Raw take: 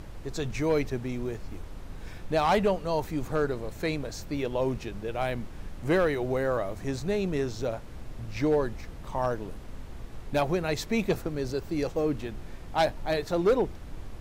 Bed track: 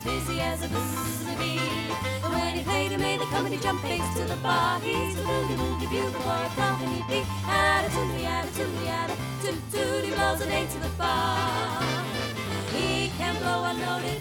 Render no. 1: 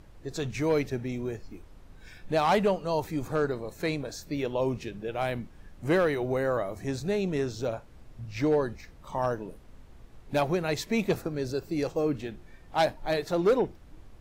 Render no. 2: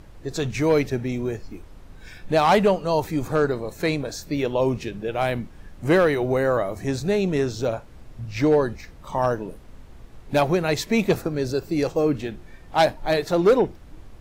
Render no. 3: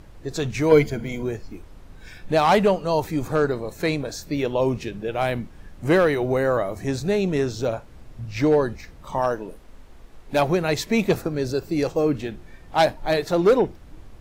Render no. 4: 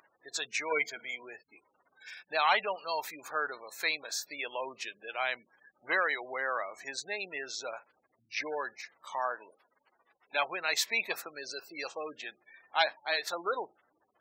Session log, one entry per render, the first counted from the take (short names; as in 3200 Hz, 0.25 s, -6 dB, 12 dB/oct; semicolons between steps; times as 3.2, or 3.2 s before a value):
noise print and reduce 10 dB
gain +6.5 dB
0.71–1.23 ripple EQ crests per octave 1.8, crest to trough 14 dB; 9.2–10.39 bell 110 Hz -8 dB 1.8 oct
spectral gate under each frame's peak -30 dB strong; HPF 1400 Hz 12 dB/oct